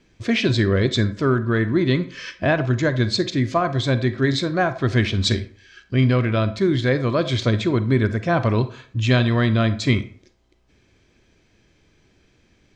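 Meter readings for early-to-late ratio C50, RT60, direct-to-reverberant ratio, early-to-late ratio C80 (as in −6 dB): 14.0 dB, 0.50 s, 11.5 dB, 18.0 dB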